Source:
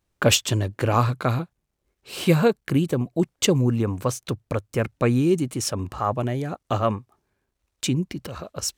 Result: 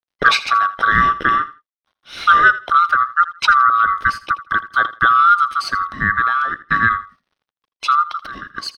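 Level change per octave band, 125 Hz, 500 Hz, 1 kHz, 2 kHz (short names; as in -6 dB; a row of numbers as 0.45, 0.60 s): -12.0, -11.5, +16.5, +18.5 dB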